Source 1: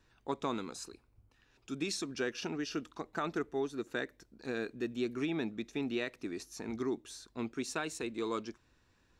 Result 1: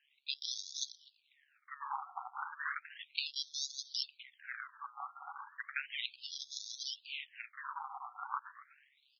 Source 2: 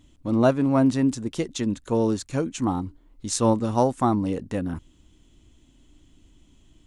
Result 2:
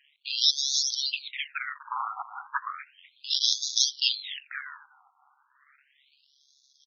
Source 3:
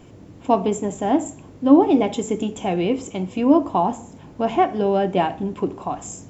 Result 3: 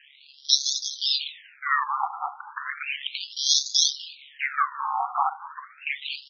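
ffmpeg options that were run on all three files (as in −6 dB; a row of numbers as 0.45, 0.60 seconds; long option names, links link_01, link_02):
-filter_complex "[0:a]highshelf=frequency=2400:gain=12,aresample=16000,asoftclip=type=tanh:threshold=-7dB,aresample=44100,acrusher=samples=20:mix=1:aa=0.000001:lfo=1:lforange=20:lforate=0.66,crystalizer=i=7:c=0,tremolo=f=140:d=0.75,asplit=2[link_01][link_02];[link_02]adelay=247,lowpass=frequency=2300:poles=1,volume=-15.5dB,asplit=2[link_03][link_04];[link_04]adelay=247,lowpass=frequency=2300:poles=1,volume=0.42,asplit=2[link_05][link_06];[link_06]adelay=247,lowpass=frequency=2300:poles=1,volume=0.42,asplit=2[link_07][link_08];[link_08]adelay=247,lowpass=frequency=2300:poles=1,volume=0.42[link_09];[link_03][link_05][link_07][link_09]amix=inputs=4:normalize=0[link_10];[link_01][link_10]amix=inputs=2:normalize=0,afftfilt=real='re*between(b*sr/1024,990*pow(4800/990,0.5+0.5*sin(2*PI*0.34*pts/sr))/1.41,990*pow(4800/990,0.5+0.5*sin(2*PI*0.34*pts/sr))*1.41)':imag='im*between(b*sr/1024,990*pow(4800/990,0.5+0.5*sin(2*PI*0.34*pts/sr))/1.41,990*pow(4800/990,0.5+0.5*sin(2*PI*0.34*pts/sr))*1.41)':win_size=1024:overlap=0.75"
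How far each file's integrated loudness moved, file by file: −3.5, −3.0, −4.5 LU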